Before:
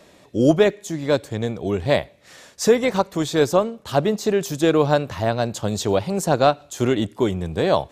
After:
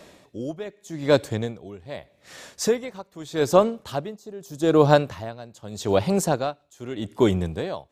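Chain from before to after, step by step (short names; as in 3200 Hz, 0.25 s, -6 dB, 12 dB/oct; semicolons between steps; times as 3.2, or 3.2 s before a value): 4.17–4.88 bell 2300 Hz -13 dB -> -5.5 dB 1.1 oct; dB-linear tremolo 0.82 Hz, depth 21 dB; gain +2.5 dB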